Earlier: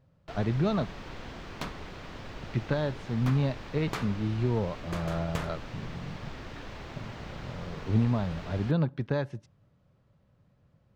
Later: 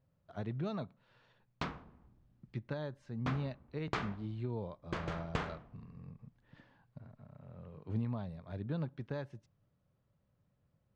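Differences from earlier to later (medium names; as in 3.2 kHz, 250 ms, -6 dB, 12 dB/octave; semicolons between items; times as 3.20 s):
speech -11.0 dB; first sound: muted; second sound: add distance through air 130 m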